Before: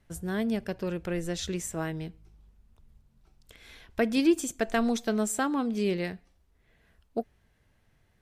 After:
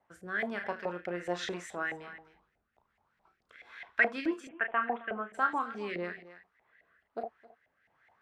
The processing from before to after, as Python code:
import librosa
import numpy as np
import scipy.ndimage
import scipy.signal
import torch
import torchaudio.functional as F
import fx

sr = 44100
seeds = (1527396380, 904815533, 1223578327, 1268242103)

p1 = x + fx.room_early_taps(x, sr, ms=(34, 74), db=(-7.5, -17.0), dry=0)
p2 = fx.filter_lfo_bandpass(p1, sr, shape='saw_up', hz=4.7, low_hz=720.0, high_hz=2100.0, q=4.7)
p3 = p2 + 10.0 ** (-18.5 / 20.0) * np.pad(p2, (int(266 * sr / 1000.0), 0))[:len(p2)]
p4 = fx.rotary(p3, sr, hz=1.2)
p5 = fx.ellip_lowpass(p4, sr, hz=3000.0, order=4, stop_db=40, at=(4.47, 5.33), fade=0.02)
p6 = fx.rider(p5, sr, range_db=10, speed_s=0.5)
p7 = p5 + (p6 * librosa.db_to_amplitude(0.0))
y = p7 * librosa.db_to_amplitude(6.0)